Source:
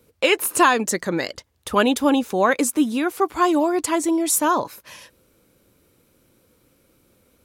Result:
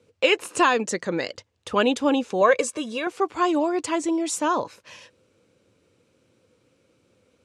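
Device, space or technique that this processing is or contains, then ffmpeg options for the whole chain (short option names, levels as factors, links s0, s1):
car door speaker: -filter_complex "[0:a]asettb=1/sr,asplit=3[s0][s1][s2];[s0]atrim=end=2.414[s3];[s1]atrim=start=2.41:end=3.07,asetpts=PTS-STARTPTS,afade=t=in:d=0.004:c=qsin,afade=t=out:st=0.656:d=0.004:c=qsin,aecho=1:1:1.8:0.71,atrim=end_sample=29106[s4];[s2]atrim=start=3.066[s5];[s3][s4]acrossfade=d=0.004:c1=hsin:c2=qsin[s6];[s6][s5]acrossfade=d=0.004:c1=qsin:c2=hsin,highpass=96,equalizer=f=100:t=q:w=4:g=6,equalizer=f=490:t=q:w=4:g=5,equalizer=f=2700:t=q:w=4:g=4,lowpass=f=7900:w=0.5412,lowpass=f=7900:w=1.3066,volume=0.631"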